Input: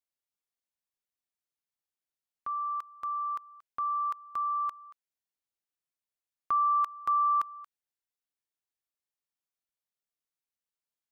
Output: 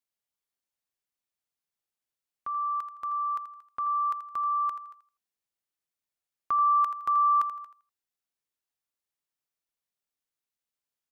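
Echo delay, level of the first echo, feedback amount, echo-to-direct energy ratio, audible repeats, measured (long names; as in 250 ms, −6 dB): 82 ms, −11.0 dB, 25%, −10.5 dB, 2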